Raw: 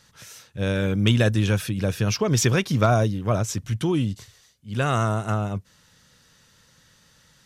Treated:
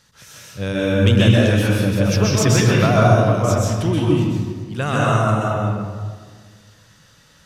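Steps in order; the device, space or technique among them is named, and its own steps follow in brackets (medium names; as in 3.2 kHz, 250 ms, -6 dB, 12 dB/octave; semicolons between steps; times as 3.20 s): stairwell (reverberation RT60 1.7 s, pre-delay 119 ms, DRR -5 dB)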